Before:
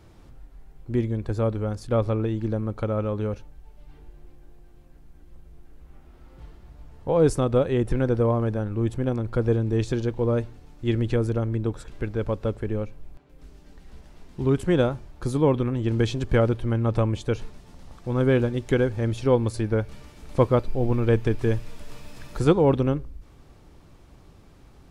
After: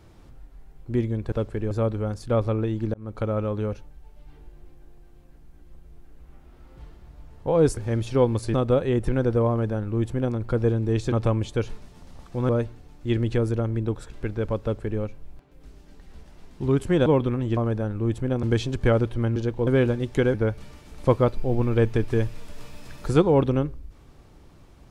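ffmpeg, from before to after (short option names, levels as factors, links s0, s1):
-filter_complex "[0:a]asplit=14[s0][s1][s2][s3][s4][s5][s6][s7][s8][s9][s10][s11][s12][s13];[s0]atrim=end=1.322[s14];[s1]atrim=start=12.398:end=12.792[s15];[s2]atrim=start=1.318:end=2.55,asetpts=PTS-STARTPTS,afade=t=out:st=1.228:d=0.004:c=hsin[s16];[s3]atrim=start=2.55:end=7.382,asetpts=PTS-STARTPTS,afade=t=in:d=0.27[s17];[s4]atrim=start=18.878:end=19.652[s18];[s5]atrim=start=7.378:end=9.962[s19];[s6]atrim=start=16.838:end=18.212[s20];[s7]atrim=start=10.268:end=14.842[s21];[s8]atrim=start=15.398:end=15.912[s22];[s9]atrim=start=8.328:end=9.192[s23];[s10]atrim=start=15.908:end=16.842[s24];[s11]atrim=start=9.958:end=10.272[s25];[s12]atrim=start=18.208:end=18.882[s26];[s13]atrim=start=19.648[s27];[s14][s15]acrossfade=d=0.004:c1=hsin:c2=hsin[s28];[s16][s17]concat=n=2:v=0:a=1[s29];[s28][s29]acrossfade=d=0.004:c1=hsin:c2=hsin[s30];[s30][s18]acrossfade=d=0.004:c1=hsin:c2=hsin[s31];[s31][s19]acrossfade=d=0.004:c1=hsin:c2=hsin[s32];[s32][s20]acrossfade=d=0.004:c1=hsin:c2=hsin[s33];[s33][s21]acrossfade=d=0.004:c1=hsin:c2=hsin[s34];[s34][s22]acrossfade=d=0.004:c1=hsin:c2=hsin[s35];[s35][s23]acrossfade=d=0.004:c1=hsin:c2=hsin[s36];[s36][s24]acrossfade=d=0.004:c1=hsin:c2=hsin[s37];[s37][s25]acrossfade=d=0.004:c1=hsin:c2=hsin[s38];[s38][s26]acrossfade=d=0.004:c1=hsin:c2=hsin[s39];[s39][s27]acrossfade=d=0.004:c1=hsin:c2=hsin"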